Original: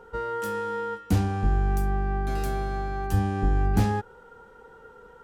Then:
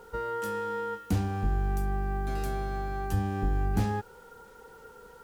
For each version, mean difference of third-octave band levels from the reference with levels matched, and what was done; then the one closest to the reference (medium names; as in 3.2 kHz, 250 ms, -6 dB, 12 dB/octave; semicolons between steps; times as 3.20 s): 3.0 dB: in parallel at -0.5 dB: compression, threshold -30 dBFS, peak gain reduction 13 dB; on the sum: bit crusher 9-bit; trim -7 dB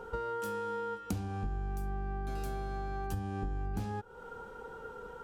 4.5 dB: peaking EQ 1.9 kHz -6.5 dB 0.23 oct; compression 6:1, threshold -38 dBFS, peak gain reduction 19.5 dB; trim +3.5 dB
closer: first